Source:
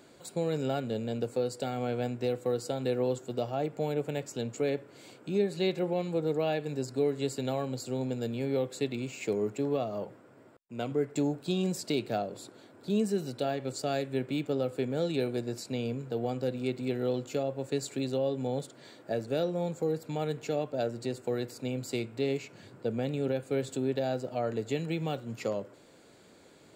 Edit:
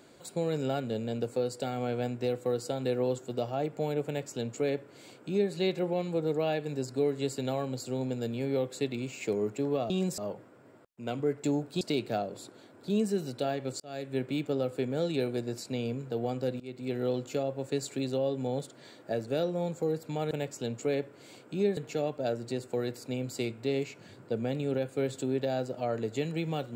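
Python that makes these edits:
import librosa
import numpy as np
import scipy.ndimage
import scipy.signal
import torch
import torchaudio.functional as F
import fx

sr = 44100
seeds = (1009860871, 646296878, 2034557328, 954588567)

y = fx.edit(x, sr, fx.duplicate(start_s=4.06, length_s=1.46, to_s=20.31),
    fx.move(start_s=11.53, length_s=0.28, to_s=9.9),
    fx.fade_in_span(start_s=13.8, length_s=0.38),
    fx.fade_in_from(start_s=16.6, length_s=0.38, floor_db=-19.5), tone=tone)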